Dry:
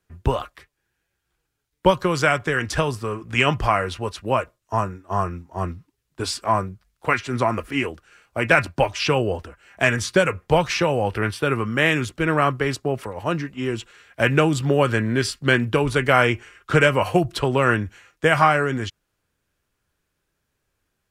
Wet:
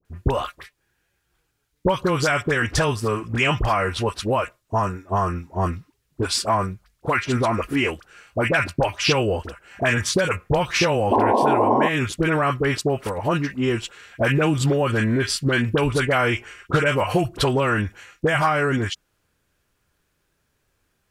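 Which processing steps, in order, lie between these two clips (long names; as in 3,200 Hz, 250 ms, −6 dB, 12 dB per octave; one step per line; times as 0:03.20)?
in parallel at −2 dB: brickwall limiter −12 dBFS, peak gain reduction 8 dB
on the sum: sound drawn into the spectrogram noise, 0:11.10–0:11.87, 210–1,100 Hz −9 dBFS
downward compressor 4 to 1, threshold −16 dBFS, peak gain reduction 10 dB
all-pass dispersion highs, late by 51 ms, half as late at 1,100 Hz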